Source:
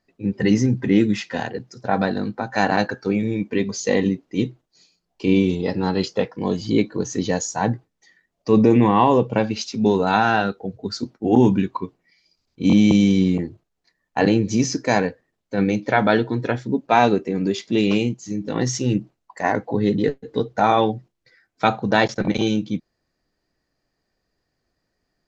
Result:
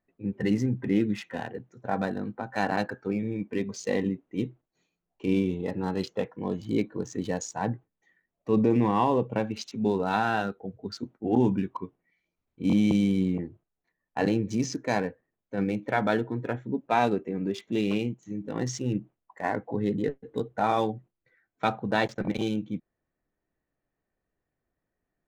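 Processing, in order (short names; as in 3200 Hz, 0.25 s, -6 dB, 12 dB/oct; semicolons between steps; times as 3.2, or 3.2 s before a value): Wiener smoothing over 9 samples; 16.13–16.74 dynamic EQ 4800 Hz, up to -4 dB, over -43 dBFS, Q 0.79; gain -8 dB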